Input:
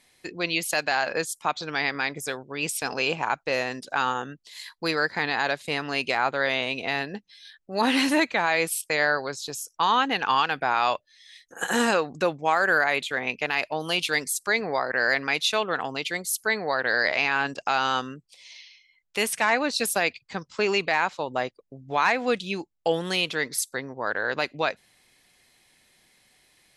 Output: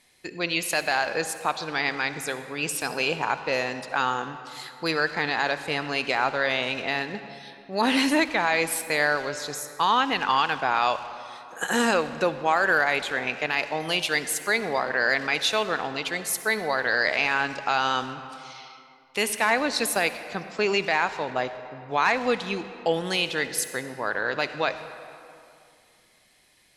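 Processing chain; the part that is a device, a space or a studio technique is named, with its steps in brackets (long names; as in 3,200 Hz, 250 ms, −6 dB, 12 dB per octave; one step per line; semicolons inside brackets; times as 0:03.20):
saturated reverb return (on a send at −8 dB: convolution reverb RT60 2.4 s, pre-delay 52 ms + soft clipping −24.5 dBFS, distortion −11 dB)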